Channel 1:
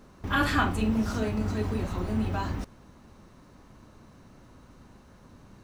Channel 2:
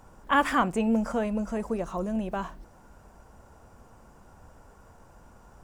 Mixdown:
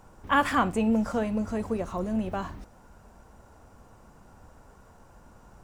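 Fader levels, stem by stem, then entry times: -11.5 dB, -0.5 dB; 0.00 s, 0.00 s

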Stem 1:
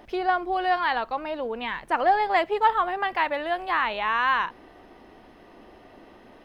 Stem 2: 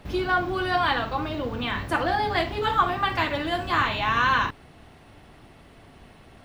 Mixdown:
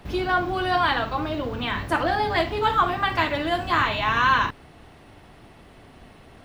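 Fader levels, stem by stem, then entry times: -7.0 dB, +1.0 dB; 0.00 s, 0.00 s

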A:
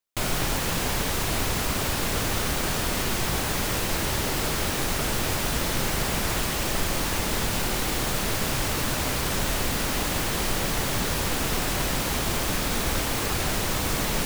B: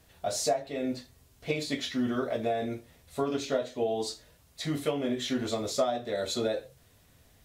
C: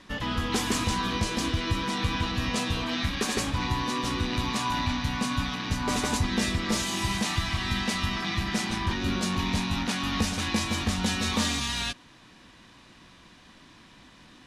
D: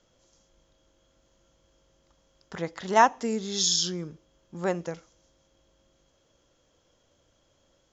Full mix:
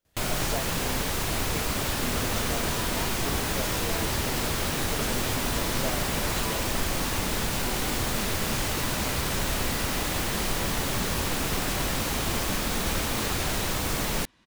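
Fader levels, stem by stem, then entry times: -2.0 dB, -8.0 dB, -10.5 dB, -20.0 dB; 0.00 s, 0.05 s, 1.80 s, 0.00 s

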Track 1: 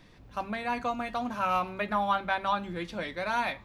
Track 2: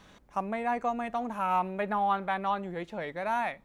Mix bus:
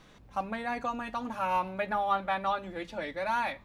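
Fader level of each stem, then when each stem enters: -5.0 dB, -2.5 dB; 0.00 s, 0.00 s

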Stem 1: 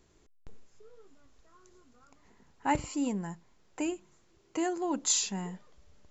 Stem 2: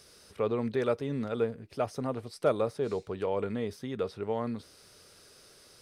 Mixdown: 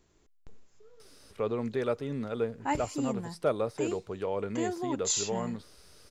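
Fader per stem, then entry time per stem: -2.0 dB, -1.5 dB; 0.00 s, 1.00 s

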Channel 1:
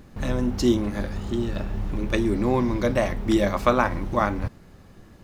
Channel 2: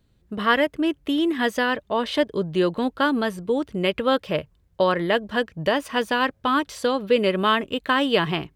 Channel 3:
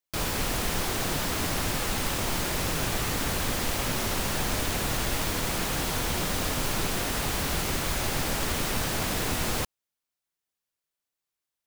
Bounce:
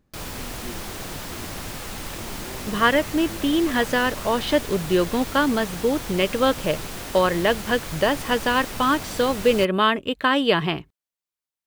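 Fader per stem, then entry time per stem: -19.0 dB, +1.0 dB, -5.0 dB; 0.00 s, 2.35 s, 0.00 s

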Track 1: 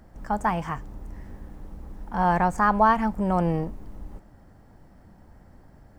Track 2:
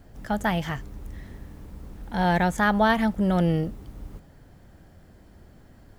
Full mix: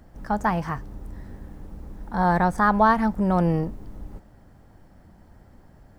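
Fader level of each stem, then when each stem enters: -0.5 dB, -8.5 dB; 0.00 s, 0.00 s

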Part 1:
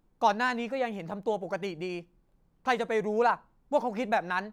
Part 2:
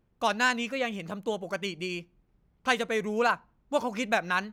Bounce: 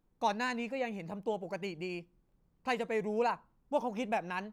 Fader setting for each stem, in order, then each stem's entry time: -6.0 dB, -15.0 dB; 0.00 s, 0.00 s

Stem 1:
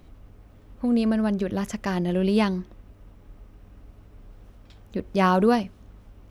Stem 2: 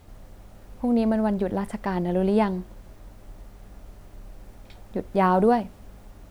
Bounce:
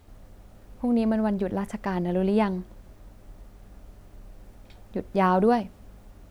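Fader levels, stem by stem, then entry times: -12.5 dB, -4.0 dB; 0.00 s, 0.00 s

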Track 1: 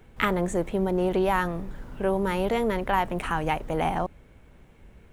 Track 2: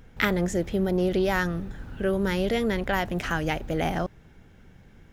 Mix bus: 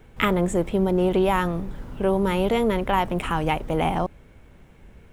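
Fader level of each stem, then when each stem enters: +2.5 dB, -9.0 dB; 0.00 s, 0.00 s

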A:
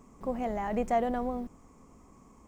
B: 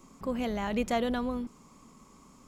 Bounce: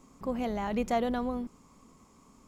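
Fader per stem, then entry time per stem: -7.5 dB, -4.0 dB; 0.00 s, 0.00 s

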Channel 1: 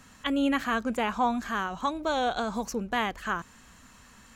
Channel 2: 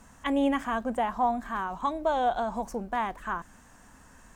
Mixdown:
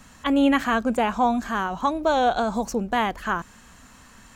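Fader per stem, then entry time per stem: +3.0 dB, -1.5 dB; 0.00 s, 0.00 s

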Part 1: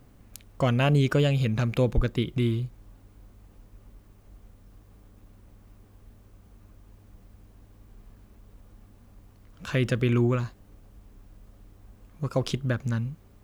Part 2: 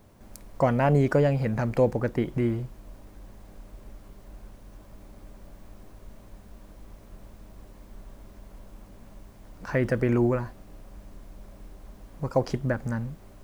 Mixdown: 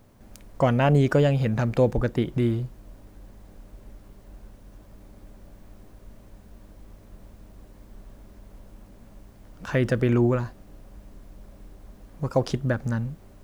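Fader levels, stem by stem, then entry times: -5.5 dB, -2.0 dB; 0.00 s, 0.00 s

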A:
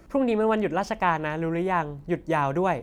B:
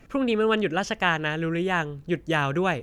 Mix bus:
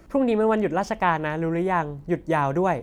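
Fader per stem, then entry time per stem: +1.0 dB, -15.5 dB; 0.00 s, 0.00 s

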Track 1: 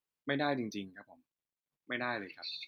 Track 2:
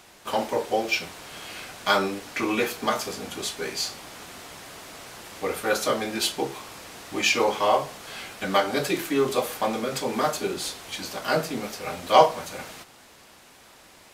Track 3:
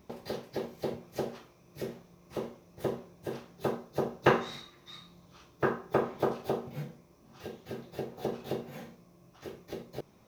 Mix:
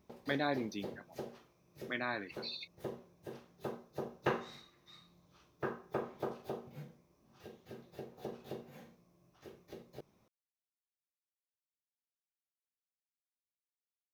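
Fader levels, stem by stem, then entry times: -1.5 dB, mute, -10.0 dB; 0.00 s, mute, 0.00 s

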